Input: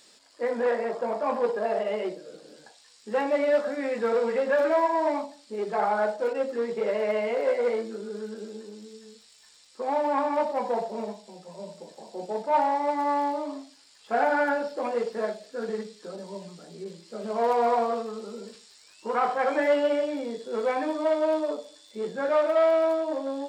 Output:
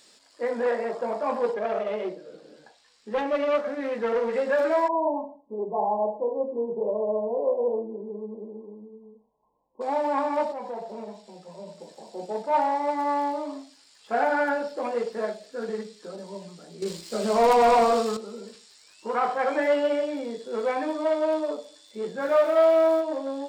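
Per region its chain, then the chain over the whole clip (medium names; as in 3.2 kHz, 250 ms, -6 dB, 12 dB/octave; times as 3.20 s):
1.54–4.33 s: self-modulated delay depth 0.23 ms + treble shelf 5 kHz -12 dB
4.88–9.81 s: brick-wall FIR low-pass 1.1 kHz + delay 113 ms -20.5 dB
10.52–11.80 s: treble shelf 5.9 kHz -5.5 dB + compression 2:1, threshold -36 dBFS
16.82–18.17 s: treble shelf 3.1 kHz +8.5 dB + waveshaping leveller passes 2
22.20–23.00 s: crackle 560 per s -42 dBFS + doubling 28 ms -5.5 dB
whole clip: none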